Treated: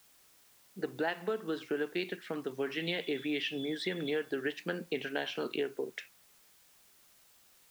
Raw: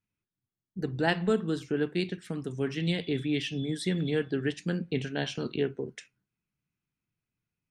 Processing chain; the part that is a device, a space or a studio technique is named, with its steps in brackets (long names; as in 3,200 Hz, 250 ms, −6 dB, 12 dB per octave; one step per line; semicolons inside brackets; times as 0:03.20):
baby monitor (band-pass filter 440–3,200 Hz; downward compressor, threshold −35 dBFS, peak gain reduction 12.5 dB; white noise bed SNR 26 dB)
level +5 dB